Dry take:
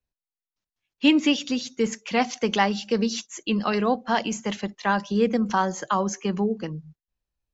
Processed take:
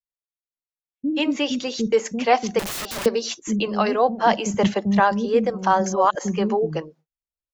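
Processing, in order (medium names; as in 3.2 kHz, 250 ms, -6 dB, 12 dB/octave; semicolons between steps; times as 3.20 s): gate -42 dBFS, range -19 dB; gain riding within 4 dB 0.5 s; peaking EQ 600 Hz +8 dB 1.8 oct; 5.73–6.15 s: reverse; bands offset in time lows, highs 130 ms, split 310 Hz; 2.59–3.06 s: integer overflow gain 25 dB; 4.54–5.00 s: peaking EQ 110 Hz +13.5 dB 2.3 oct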